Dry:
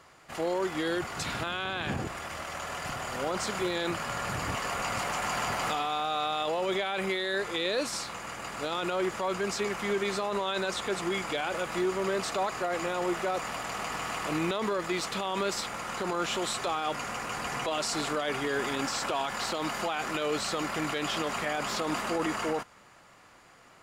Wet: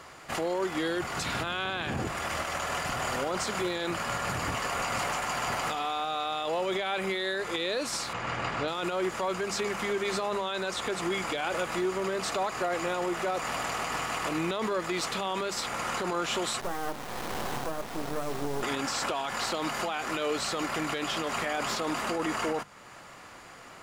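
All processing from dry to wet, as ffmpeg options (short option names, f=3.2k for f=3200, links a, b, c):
-filter_complex "[0:a]asettb=1/sr,asplit=3[a][b][c];[a]atrim=end=8.134[d];[b]atrim=start=8.13:end=8.68,asetpts=PTS-STARTPTS,afade=t=in:d=0.004:c=qsin,afade=t=out:st=0.546:d=0.004:c=qsin,lowpass=4k,equalizer=f=120:w=1.6:g=6.5[e];[c]atrim=start=8.676[f];[d][e]acrossfade=d=0.004:c1=hsin:c2=qsin[g];[g][f]acrossfade=d=0.004:c1=qsin:c2=hsin,asettb=1/sr,asplit=3[h][i][j];[h]atrim=end=16.604[k];[i]atrim=start=16.6:end=18.63,asetpts=PTS-STARTPTS,afade=t=in:d=0.004:c=qsin,afade=t=out:st=2.026:d=0.004:c=qsin,lowpass=f=1k:w=0.5412,lowpass=f=1k:w=1.3066,acrusher=bits=4:dc=4:mix=0:aa=0.000001,asplit=2[l][m];[m]adelay=28,volume=-12dB[n];[l][n]amix=inputs=2:normalize=0,atrim=end_sample=89523[o];[j]atrim=start=18.626[p];[k][o]acrossfade=d=0.004:c1=hsin:c2=qsin[q];[q][p]acrossfade=d=0.004:c1=qsin:c2=hsin,alimiter=level_in=5dB:limit=-24dB:level=0:latency=1:release=426,volume=-5dB,bandreject=f=50:t=h:w=6,bandreject=f=100:t=h:w=6,bandreject=f=150:t=h:w=6,bandreject=f=200:t=h:w=6,volume=8dB"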